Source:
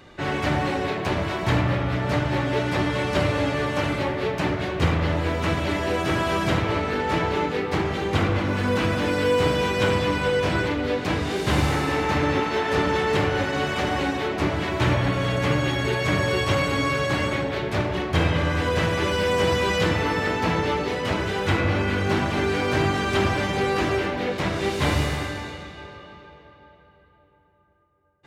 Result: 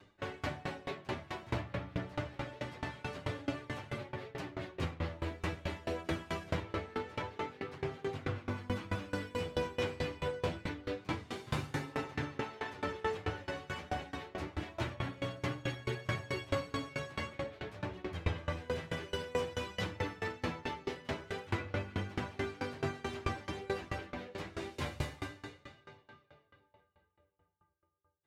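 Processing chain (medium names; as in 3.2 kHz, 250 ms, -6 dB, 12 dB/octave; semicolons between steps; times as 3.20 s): chorus voices 2, 0.25 Hz, delay 10 ms, depth 2.6 ms; sawtooth tremolo in dB decaying 4.6 Hz, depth 24 dB; trim -6 dB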